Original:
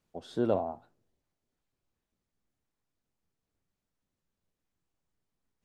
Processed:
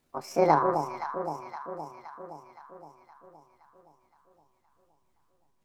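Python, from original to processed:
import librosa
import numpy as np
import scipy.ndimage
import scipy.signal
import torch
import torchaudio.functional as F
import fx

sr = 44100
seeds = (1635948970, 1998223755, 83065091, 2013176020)

y = fx.pitch_glide(x, sr, semitones=8.0, runs='ending unshifted')
y = fx.echo_alternate(y, sr, ms=259, hz=920.0, feedback_pct=74, wet_db=-6.0)
y = y * librosa.db_to_amplitude(7.5)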